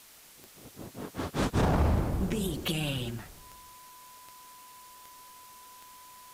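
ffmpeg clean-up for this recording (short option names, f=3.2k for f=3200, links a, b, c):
-af "adeclick=t=4,bandreject=f=1k:w=30,afwtdn=0.0022"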